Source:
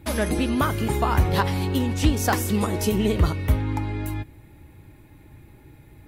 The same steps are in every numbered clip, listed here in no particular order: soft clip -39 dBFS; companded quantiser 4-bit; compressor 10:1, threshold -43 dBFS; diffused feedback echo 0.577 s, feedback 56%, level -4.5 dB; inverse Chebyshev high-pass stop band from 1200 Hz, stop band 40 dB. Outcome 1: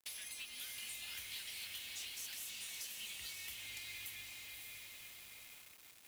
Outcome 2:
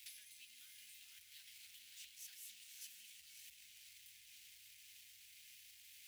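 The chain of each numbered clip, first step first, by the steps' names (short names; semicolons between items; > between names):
inverse Chebyshev high-pass > compressor > diffused feedback echo > companded quantiser > soft clip; companded quantiser > diffused feedback echo > compressor > soft clip > inverse Chebyshev high-pass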